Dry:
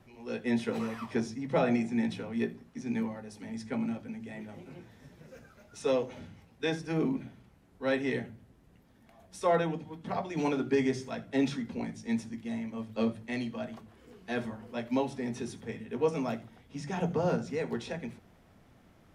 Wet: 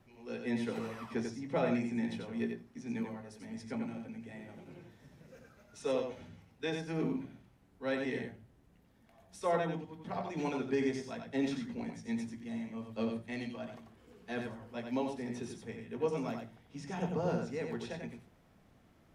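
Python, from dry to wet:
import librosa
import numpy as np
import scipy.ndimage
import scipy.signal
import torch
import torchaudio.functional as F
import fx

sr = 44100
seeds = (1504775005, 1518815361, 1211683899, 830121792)

y = x + 10.0 ** (-5.5 / 20.0) * np.pad(x, (int(91 * sr / 1000.0), 0))[:len(x)]
y = y * librosa.db_to_amplitude(-5.5)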